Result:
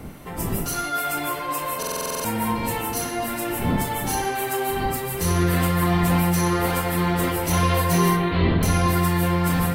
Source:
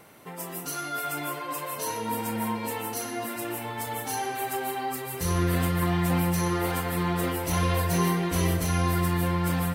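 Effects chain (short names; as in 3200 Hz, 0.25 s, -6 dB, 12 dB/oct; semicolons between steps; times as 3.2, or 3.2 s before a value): wind noise 230 Hz -38 dBFS; in parallel at -8.5 dB: soft clip -16.5 dBFS, distortion -22 dB; 8.16–8.63 on the sum: elliptic low-pass 4100 Hz, stop band 40 dB; reverb RT60 0.55 s, pre-delay 11 ms, DRR 9 dB; stuck buffer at 1.78, samples 2048, times 9; gain +2.5 dB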